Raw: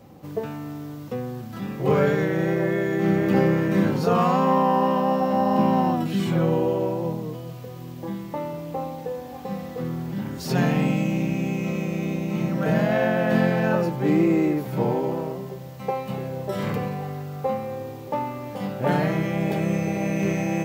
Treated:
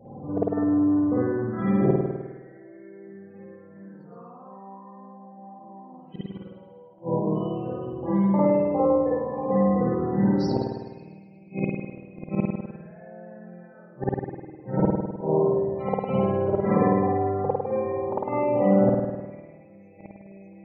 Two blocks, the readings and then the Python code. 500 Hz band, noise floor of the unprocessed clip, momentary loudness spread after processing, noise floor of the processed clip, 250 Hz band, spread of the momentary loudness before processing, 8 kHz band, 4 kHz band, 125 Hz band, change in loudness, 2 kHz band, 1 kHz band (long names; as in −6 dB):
−1.0 dB, −37 dBFS, 22 LU, −49 dBFS, −2.0 dB, 13 LU, below −20 dB, below −10 dB, −4.5 dB, −0.5 dB, −12.5 dB, −5.0 dB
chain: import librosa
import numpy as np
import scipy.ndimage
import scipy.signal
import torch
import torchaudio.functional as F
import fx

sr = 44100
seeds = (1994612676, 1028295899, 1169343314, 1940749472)

y = fx.low_shelf(x, sr, hz=120.0, db=-4.0)
y = fx.spec_topn(y, sr, count=32)
y = fx.gate_flip(y, sr, shuts_db=-17.0, range_db=-34)
y = fx.rev_spring(y, sr, rt60_s=1.2, pass_ms=(51,), chirp_ms=70, drr_db=-9.0)